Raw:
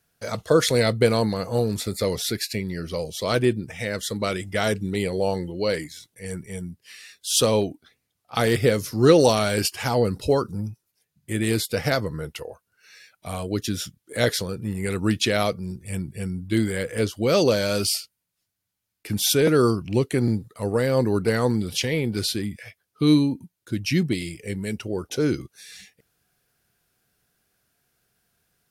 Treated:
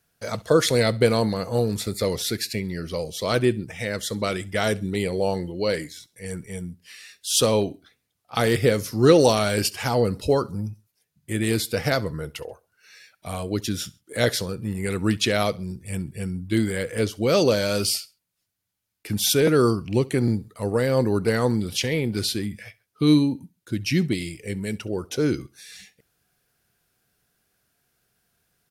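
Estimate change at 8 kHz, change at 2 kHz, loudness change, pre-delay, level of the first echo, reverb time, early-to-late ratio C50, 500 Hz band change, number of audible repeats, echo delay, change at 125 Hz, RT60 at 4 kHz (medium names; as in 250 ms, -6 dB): 0.0 dB, 0.0 dB, 0.0 dB, no reverb, -22.5 dB, no reverb, no reverb, 0.0 dB, 2, 67 ms, 0.0 dB, no reverb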